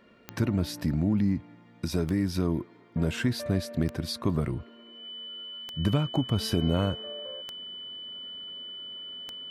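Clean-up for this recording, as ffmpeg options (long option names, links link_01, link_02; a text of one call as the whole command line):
ffmpeg -i in.wav -af "adeclick=threshold=4,bandreject=frequency=3000:width=30" out.wav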